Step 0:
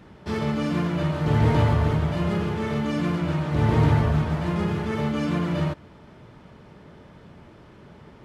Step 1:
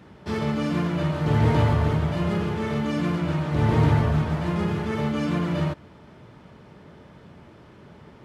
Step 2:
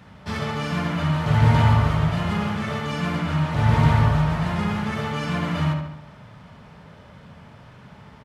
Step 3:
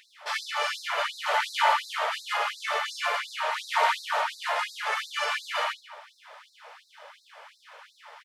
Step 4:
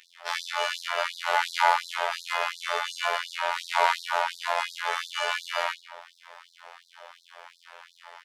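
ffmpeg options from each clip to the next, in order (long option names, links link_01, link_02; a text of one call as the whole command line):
ffmpeg -i in.wav -af "highpass=53" out.wav
ffmpeg -i in.wav -filter_complex "[0:a]equalizer=frequency=350:width_type=o:width=0.69:gain=-13.5,bandreject=frequency=73.39:width_type=h:width=4,bandreject=frequency=146.78:width_type=h:width=4,bandreject=frequency=220.17:width_type=h:width=4,bandreject=frequency=293.56:width_type=h:width=4,bandreject=frequency=366.95:width_type=h:width=4,bandreject=frequency=440.34:width_type=h:width=4,bandreject=frequency=513.73:width_type=h:width=4,bandreject=frequency=587.12:width_type=h:width=4,bandreject=frequency=660.51:width_type=h:width=4,bandreject=frequency=733.9:width_type=h:width=4,bandreject=frequency=807.29:width_type=h:width=4,bandreject=frequency=880.68:width_type=h:width=4,asplit=2[link_01][link_02];[link_02]adelay=72,lowpass=frequency=4700:poles=1,volume=-5.5dB,asplit=2[link_03][link_04];[link_04]adelay=72,lowpass=frequency=4700:poles=1,volume=0.55,asplit=2[link_05][link_06];[link_06]adelay=72,lowpass=frequency=4700:poles=1,volume=0.55,asplit=2[link_07][link_08];[link_08]adelay=72,lowpass=frequency=4700:poles=1,volume=0.55,asplit=2[link_09][link_10];[link_10]adelay=72,lowpass=frequency=4700:poles=1,volume=0.55,asplit=2[link_11][link_12];[link_12]adelay=72,lowpass=frequency=4700:poles=1,volume=0.55,asplit=2[link_13][link_14];[link_14]adelay=72,lowpass=frequency=4700:poles=1,volume=0.55[link_15];[link_03][link_05][link_07][link_09][link_11][link_13][link_15]amix=inputs=7:normalize=0[link_16];[link_01][link_16]amix=inputs=2:normalize=0,volume=3.5dB" out.wav
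ffmpeg -i in.wav -af "afftfilt=real='re*gte(b*sr/1024,430*pow(3800/430,0.5+0.5*sin(2*PI*2.8*pts/sr)))':imag='im*gte(b*sr/1024,430*pow(3800/430,0.5+0.5*sin(2*PI*2.8*pts/sr)))':win_size=1024:overlap=0.75,volume=4dB" out.wav
ffmpeg -i in.wav -af "afftfilt=real='hypot(re,im)*cos(PI*b)':imag='0':win_size=2048:overlap=0.75,volume=4dB" out.wav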